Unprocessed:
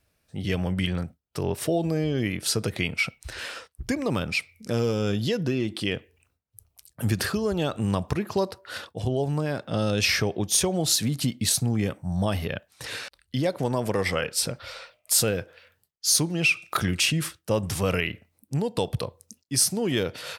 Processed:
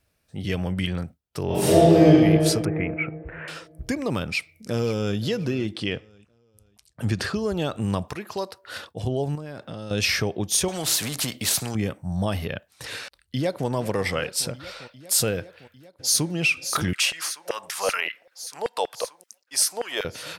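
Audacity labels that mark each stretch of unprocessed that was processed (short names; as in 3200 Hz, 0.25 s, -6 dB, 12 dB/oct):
1.460000	2.080000	reverb throw, RT60 2.5 s, DRR -11 dB
2.650000	3.480000	steep low-pass 2300 Hz 48 dB/oct
4.200000	5.180000	echo throw 0.53 s, feedback 30%, level -17.5 dB
5.730000	7.380000	LPF 6800 Hz
8.080000	8.640000	low shelf 380 Hz -12 dB
9.350000	9.910000	compressor 10:1, threshold -31 dBFS
10.680000	11.750000	spectral compressor 2:1
13.000000	13.670000	echo throw 0.4 s, feedback 80%, level -15.5 dB
15.410000	16.330000	echo throw 0.58 s, feedback 75%, level -8.5 dB
16.930000	20.050000	LFO high-pass saw down 5.2 Hz 530–1900 Hz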